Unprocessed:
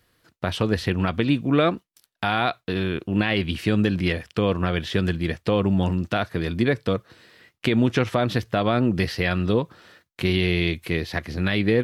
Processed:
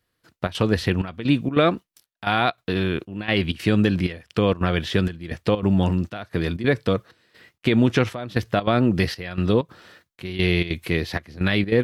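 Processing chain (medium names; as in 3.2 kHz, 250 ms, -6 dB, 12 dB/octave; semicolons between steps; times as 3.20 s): trance gate "...xxx.xxxxxx" 192 bpm -12 dB; trim +2 dB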